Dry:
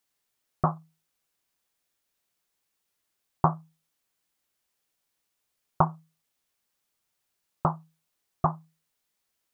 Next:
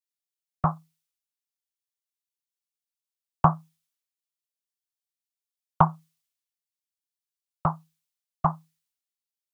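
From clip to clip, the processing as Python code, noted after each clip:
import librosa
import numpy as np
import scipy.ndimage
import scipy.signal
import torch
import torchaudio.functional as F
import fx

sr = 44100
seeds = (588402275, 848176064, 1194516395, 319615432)

y = fx.peak_eq(x, sr, hz=360.0, db=-9.5, octaves=1.4)
y = fx.band_widen(y, sr, depth_pct=100)
y = y * librosa.db_to_amplitude(-2.5)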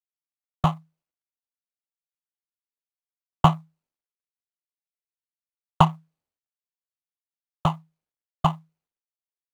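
y = scipy.signal.medfilt(x, 25)
y = y * librosa.db_to_amplitude(4.0)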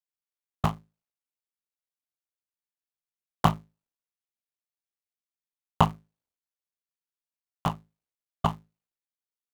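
y = fx.cycle_switch(x, sr, every=3, mode='muted')
y = y * librosa.db_to_amplitude(-3.0)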